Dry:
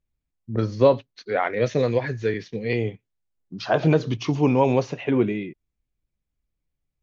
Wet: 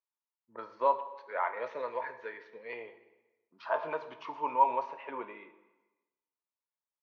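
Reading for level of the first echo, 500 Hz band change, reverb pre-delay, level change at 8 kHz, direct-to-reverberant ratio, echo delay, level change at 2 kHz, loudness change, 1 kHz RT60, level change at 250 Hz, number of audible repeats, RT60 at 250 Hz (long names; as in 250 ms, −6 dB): no echo audible, −14.5 dB, 3 ms, can't be measured, 9.5 dB, no echo audible, −10.0 dB, −11.0 dB, 1.1 s, −27.0 dB, no echo audible, 1.1 s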